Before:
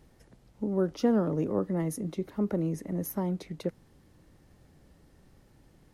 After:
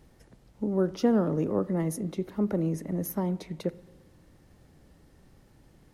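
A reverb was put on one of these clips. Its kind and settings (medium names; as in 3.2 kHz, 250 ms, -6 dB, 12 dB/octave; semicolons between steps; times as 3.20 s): spring tank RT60 1.2 s, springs 43/57 ms, DRR 17.5 dB; trim +1.5 dB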